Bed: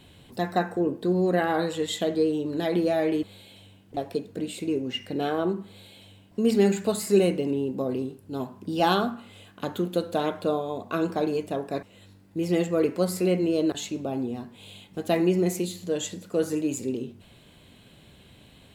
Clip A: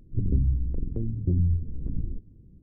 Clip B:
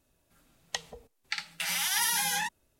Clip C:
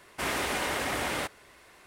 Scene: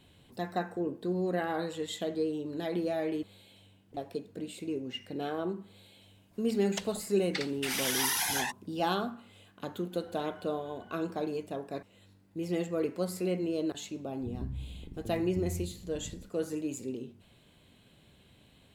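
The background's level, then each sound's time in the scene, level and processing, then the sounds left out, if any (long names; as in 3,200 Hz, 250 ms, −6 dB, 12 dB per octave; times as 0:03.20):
bed −8 dB
0:06.03: mix in B −2 dB + random phases in short frames
0:09.73: mix in C −11 dB + resonances in every octave F#, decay 0.14 s
0:14.09: mix in A −10.5 dB + high-pass filter 100 Hz 6 dB per octave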